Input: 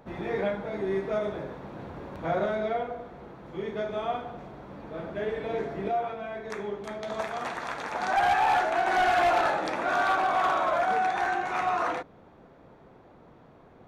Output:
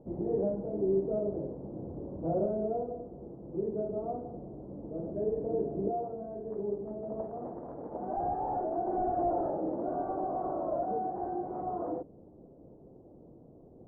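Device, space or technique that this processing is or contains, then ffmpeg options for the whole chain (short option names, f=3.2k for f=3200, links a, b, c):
under water: -af "lowpass=f=590:w=0.5412,lowpass=f=590:w=1.3066,equalizer=f=320:t=o:w=0.36:g=4"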